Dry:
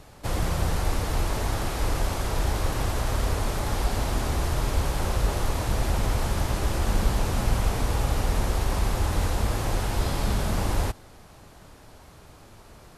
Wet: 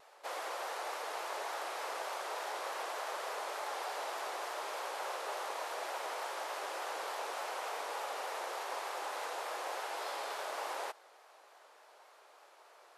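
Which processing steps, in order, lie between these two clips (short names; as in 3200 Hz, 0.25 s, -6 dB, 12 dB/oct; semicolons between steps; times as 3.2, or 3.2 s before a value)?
Bessel high-pass 840 Hz, order 8; tilt -3 dB/oct; vibrato 3.4 Hz 49 cents; gain -3 dB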